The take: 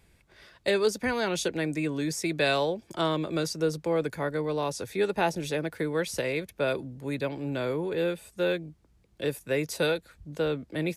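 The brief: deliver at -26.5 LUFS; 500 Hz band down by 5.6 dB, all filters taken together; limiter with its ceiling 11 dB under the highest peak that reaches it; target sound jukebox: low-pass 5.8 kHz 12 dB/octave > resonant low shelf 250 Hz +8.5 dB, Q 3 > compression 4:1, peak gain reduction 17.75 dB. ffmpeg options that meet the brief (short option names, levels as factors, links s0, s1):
-af "equalizer=f=500:t=o:g=-3,alimiter=limit=0.0668:level=0:latency=1,lowpass=5800,lowshelf=f=250:t=q:w=3:g=8.5,acompressor=threshold=0.00891:ratio=4,volume=5.96"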